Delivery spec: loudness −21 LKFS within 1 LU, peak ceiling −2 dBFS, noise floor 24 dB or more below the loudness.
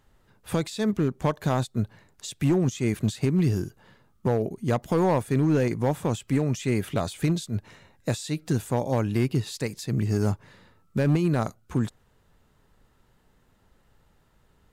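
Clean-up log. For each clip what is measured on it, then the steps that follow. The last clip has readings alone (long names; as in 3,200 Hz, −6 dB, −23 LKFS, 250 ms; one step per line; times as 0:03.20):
share of clipped samples 0.9%; peaks flattened at −16.0 dBFS; integrated loudness −26.5 LKFS; sample peak −16.0 dBFS; target loudness −21.0 LKFS
→ clipped peaks rebuilt −16 dBFS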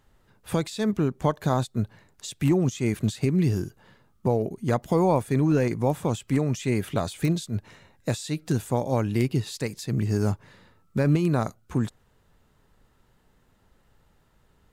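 share of clipped samples 0.0%; integrated loudness −26.0 LKFS; sample peak −9.5 dBFS; target loudness −21.0 LKFS
→ level +5 dB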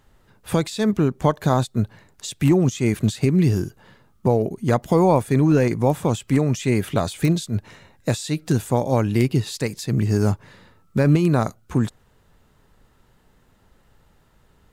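integrated loudness −21.0 LKFS; sample peak −4.5 dBFS; background noise floor −59 dBFS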